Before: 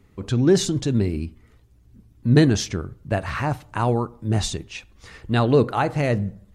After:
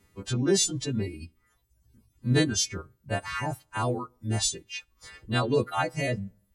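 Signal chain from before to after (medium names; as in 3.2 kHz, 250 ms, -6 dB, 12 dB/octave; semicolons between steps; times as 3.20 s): partials quantised in pitch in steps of 2 st; reverb removal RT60 0.83 s; trim -6 dB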